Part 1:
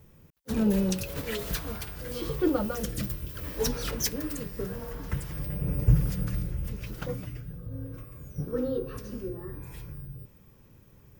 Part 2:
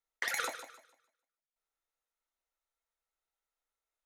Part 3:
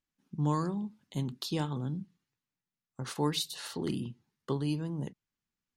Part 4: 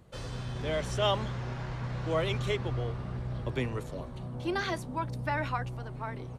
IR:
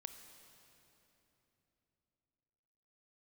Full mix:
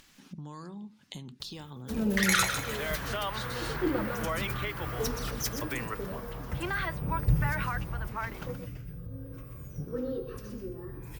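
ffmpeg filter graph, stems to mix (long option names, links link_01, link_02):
-filter_complex "[0:a]adelay=1400,volume=-4.5dB,asplit=2[link_01][link_02];[link_02]volume=-9dB[link_03];[1:a]highpass=1300,dynaudnorm=framelen=170:gausssize=5:maxgain=14dB,adelay=1950,volume=3dB[link_04];[2:a]acompressor=threshold=-40dB:ratio=6,volume=-4dB[link_05];[3:a]equalizer=frequency=1500:width_type=o:width=2.1:gain=14,highshelf=frequency=4200:gain=-12,adelay=2150,volume=-8dB[link_06];[link_05][link_06]amix=inputs=2:normalize=0,equalizer=frequency=3600:width=0.4:gain=7,alimiter=limit=-24dB:level=0:latency=1:release=93,volume=0dB[link_07];[link_03]aecho=0:1:124:1[link_08];[link_01][link_04][link_07][link_08]amix=inputs=4:normalize=0,acompressor=mode=upward:threshold=-36dB:ratio=2.5"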